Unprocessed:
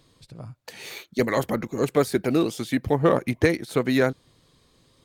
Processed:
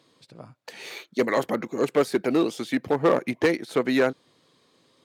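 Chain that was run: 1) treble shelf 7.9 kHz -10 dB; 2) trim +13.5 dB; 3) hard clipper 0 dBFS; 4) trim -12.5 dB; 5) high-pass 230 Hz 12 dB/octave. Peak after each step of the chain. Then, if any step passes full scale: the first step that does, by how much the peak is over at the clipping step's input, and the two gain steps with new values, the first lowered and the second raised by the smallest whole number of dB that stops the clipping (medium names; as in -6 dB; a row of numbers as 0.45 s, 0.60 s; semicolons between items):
-7.0 dBFS, +6.5 dBFS, 0.0 dBFS, -12.5 dBFS, -8.0 dBFS; step 2, 6.5 dB; step 2 +6.5 dB, step 4 -5.5 dB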